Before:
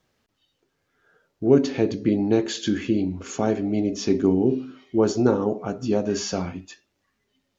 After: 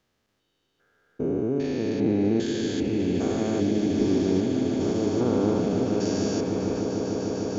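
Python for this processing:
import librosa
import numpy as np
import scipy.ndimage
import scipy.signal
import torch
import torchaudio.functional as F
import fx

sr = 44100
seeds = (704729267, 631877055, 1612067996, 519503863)

y = fx.spec_steps(x, sr, hold_ms=400)
y = fx.echo_swell(y, sr, ms=150, loudest=8, wet_db=-12.0)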